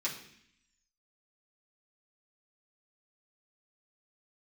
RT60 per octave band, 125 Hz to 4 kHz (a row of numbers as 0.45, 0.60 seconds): 0.85, 0.95, 0.65, 0.65, 0.90, 0.85 seconds